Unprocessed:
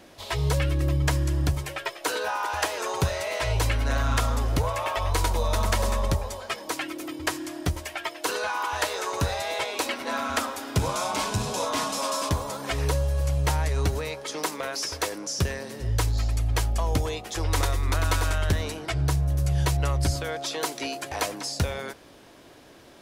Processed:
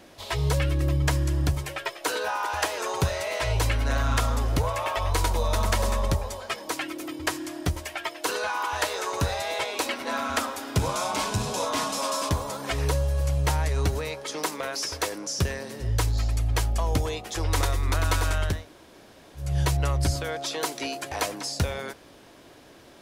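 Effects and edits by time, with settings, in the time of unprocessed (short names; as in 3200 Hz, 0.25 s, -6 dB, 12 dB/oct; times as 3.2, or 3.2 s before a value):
18.55–19.46 room tone, crossfade 0.24 s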